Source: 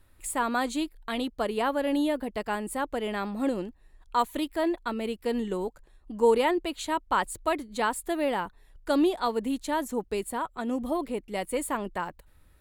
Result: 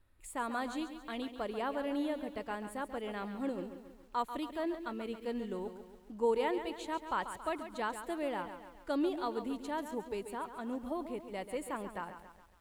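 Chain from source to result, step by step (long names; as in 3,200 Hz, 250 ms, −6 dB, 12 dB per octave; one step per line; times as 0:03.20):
high-shelf EQ 5,300 Hz −7 dB
feedback echo at a low word length 138 ms, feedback 55%, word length 9 bits, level −10 dB
level −9 dB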